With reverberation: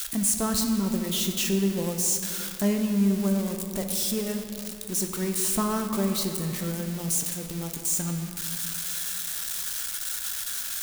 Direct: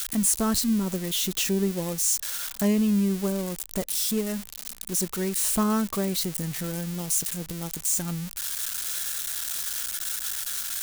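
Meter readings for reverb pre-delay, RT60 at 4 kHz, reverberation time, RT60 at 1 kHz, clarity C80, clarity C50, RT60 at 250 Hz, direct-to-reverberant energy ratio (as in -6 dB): 10 ms, 1.6 s, 2.6 s, 2.5 s, 7.0 dB, 5.5 dB, 2.8 s, 4.5 dB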